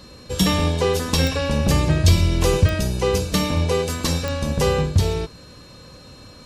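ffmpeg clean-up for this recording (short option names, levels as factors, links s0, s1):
-af "adeclick=t=4,bandreject=f=4200:w=30"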